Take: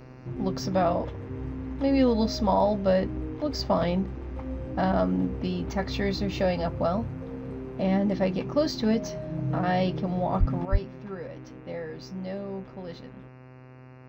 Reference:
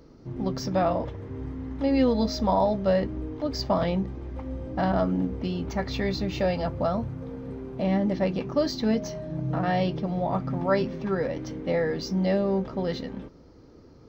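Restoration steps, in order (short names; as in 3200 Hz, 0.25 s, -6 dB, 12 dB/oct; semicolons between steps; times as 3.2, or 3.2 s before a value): de-hum 128.1 Hz, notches 22; 10.39–10.51 HPF 140 Hz 24 dB/oct; 10.65 gain correction +10.5 dB; 10.71–10.83 HPF 140 Hz 24 dB/oct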